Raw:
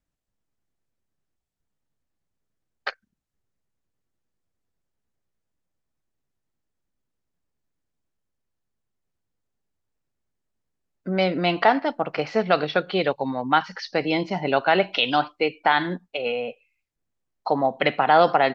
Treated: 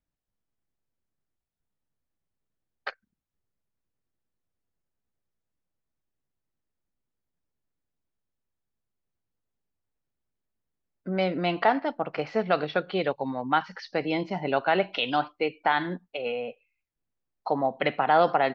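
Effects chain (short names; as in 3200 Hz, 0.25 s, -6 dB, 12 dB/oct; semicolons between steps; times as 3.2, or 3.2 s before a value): high shelf 4900 Hz -9.5 dB; gain -4 dB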